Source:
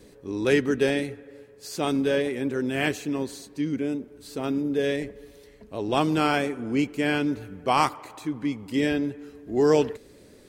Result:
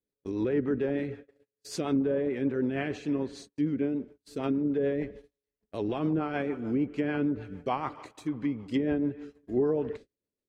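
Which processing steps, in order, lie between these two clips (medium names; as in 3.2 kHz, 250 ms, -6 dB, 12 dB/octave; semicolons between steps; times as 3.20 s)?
peak limiter -17 dBFS, peak gain reduction 9 dB; gate -42 dBFS, range -39 dB; low-pass that closes with the level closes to 1 kHz, closed at -21 dBFS; rotary cabinet horn 6.7 Hz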